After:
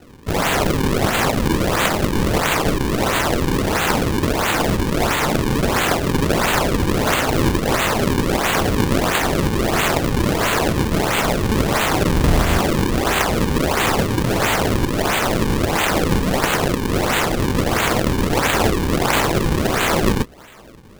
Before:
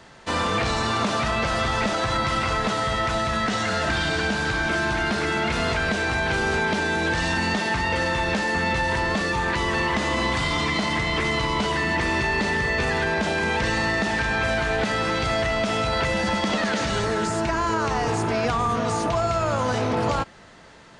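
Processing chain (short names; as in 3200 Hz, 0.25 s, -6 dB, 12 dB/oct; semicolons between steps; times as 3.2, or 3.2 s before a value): spectral limiter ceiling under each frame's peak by 30 dB; 12.13–12.59 RIAA curve playback; decimation with a swept rate 38×, swing 160% 1.5 Hz; gain +6 dB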